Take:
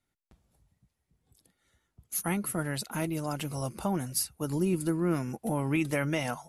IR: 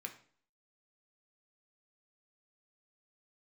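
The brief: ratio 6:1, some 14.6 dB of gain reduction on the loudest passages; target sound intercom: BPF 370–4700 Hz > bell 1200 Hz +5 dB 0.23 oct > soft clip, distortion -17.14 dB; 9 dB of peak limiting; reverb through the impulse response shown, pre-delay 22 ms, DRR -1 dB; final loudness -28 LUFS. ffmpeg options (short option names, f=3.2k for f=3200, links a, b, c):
-filter_complex "[0:a]acompressor=threshold=-40dB:ratio=6,alimiter=level_in=11.5dB:limit=-24dB:level=0:latency=1,volume=-11.5dB,asplit=2[a][b];[1:a]atrim=start_sample=2205,adelay=22[c];[b][c]afir=irnorm=-1:irlink=0,volume=3.5dB[d];[a][d]amix=inputs=2:normalize=0,highpass=370,lowpass=4.7k,equalizer=f=1.2k:t=o:w=0.23:g=5,asoftclip=threshold=-40dB,volume=21dB"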